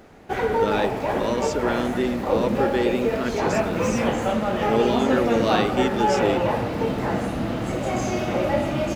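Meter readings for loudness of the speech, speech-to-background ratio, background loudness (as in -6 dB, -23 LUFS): -26.5 LUFS, -2.5 dB, -24.0 LUFS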